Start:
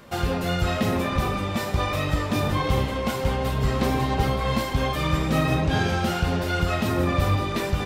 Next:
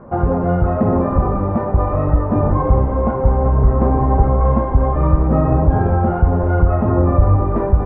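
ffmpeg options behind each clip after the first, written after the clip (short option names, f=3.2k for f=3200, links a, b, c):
-filter_complex "[0:a]lowpass=f=1.1k:w=0.5412,lowpass=f=1.1k:w=1.3066,asubboost=boost=4:cutoff=68,asplit=2[a][b];[b]alimiter=limit=-16dB:level=0:latency=1:release=264,volume=2.5dB[c];[a][c]amix=inputs=2:normalize=0,volume=2.5dB"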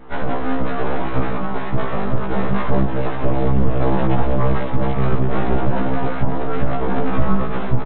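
-af "aresample=8000,aeval=exprs='abs(val(0))':c=same,aresample=44100,afftfilt=real='re*1.73*eq(mod(b,3),0)':imag='im*1.73*eq(mod(b,3),0)':win_size=2048:overlap=0.75"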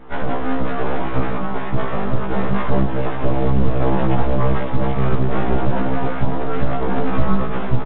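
-ar 8000 -c:a pcm_mulaw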